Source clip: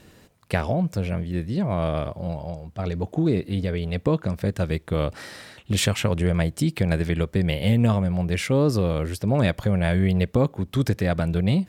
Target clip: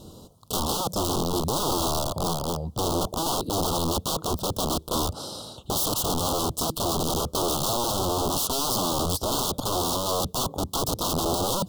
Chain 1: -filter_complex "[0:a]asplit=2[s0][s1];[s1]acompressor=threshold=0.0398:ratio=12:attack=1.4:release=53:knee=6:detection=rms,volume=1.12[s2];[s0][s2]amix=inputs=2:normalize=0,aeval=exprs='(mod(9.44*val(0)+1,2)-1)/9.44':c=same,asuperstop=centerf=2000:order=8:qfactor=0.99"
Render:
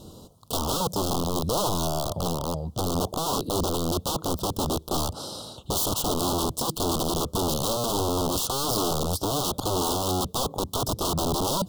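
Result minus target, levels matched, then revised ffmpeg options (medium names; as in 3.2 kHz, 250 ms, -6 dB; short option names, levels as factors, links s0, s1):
compression: peak gain reduction +7.5 dB
-filter_complex "[0:a]asplit=2[s0][s1];[s1]acompressor=threshold=0.1:ratio=12:attack=1.4:release=53:knee=6:detection=rms,volume=1.12[s2];[s0][s2]amix=inputs=2:normalize=0,aeval=exprs='(mod(9.44*val(0)+1,2)-1)/9.44':c=same,asuperstop=centerf=2000:order=8:qfactor=0.99"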